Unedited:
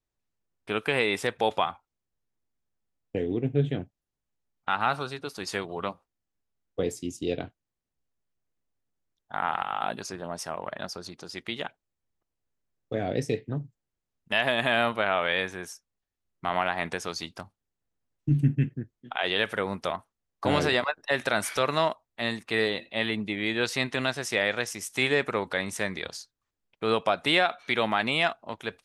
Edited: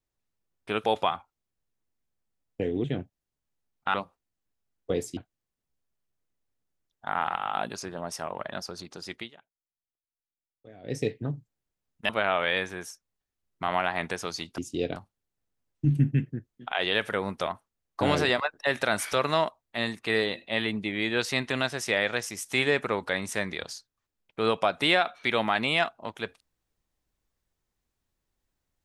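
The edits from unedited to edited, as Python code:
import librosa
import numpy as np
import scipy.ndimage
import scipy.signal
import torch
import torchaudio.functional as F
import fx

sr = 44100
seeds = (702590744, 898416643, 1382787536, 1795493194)

y = fx.edit(x, sr, fx.cut(start_s=0.84, length_s=0.55),
    fx.cut(start_s=3.39, length_s=0.26),
    fx.cut(start_s=4.75, length_s=1.08),
    fx.move(start_s=7.06, length_s=0.38, to_s=17.4),
    fx.fade_down_up(start_s=11.43, length_s=1.82, db=-20.0, fade_s=0.15),
    fx.cut(start_s=14.36, length_s=0.55), tone=tone)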